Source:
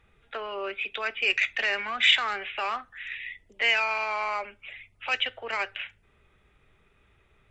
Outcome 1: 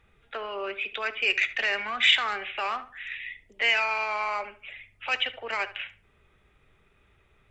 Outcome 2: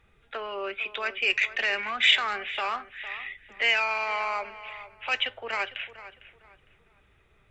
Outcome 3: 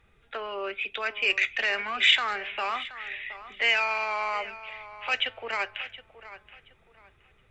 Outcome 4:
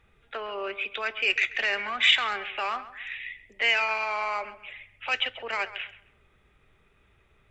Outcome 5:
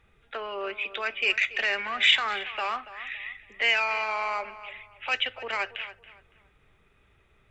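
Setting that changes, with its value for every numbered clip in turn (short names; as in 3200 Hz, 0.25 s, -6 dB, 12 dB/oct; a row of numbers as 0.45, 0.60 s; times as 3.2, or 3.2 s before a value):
tape echo, time: 73, 454, 723, 134, 281 ms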